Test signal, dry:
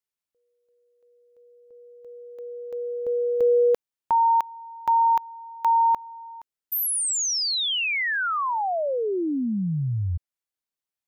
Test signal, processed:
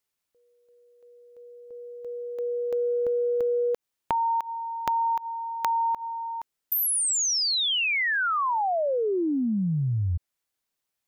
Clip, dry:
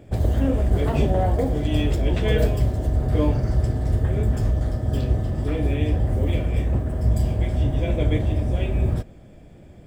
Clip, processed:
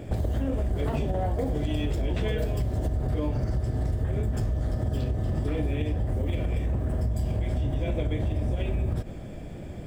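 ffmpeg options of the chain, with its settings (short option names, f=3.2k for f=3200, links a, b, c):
-af "acompressor=threshold=-31dB:ratio=12:attack=9:release=101:knee=1:detection=rms,volume=7.5dB"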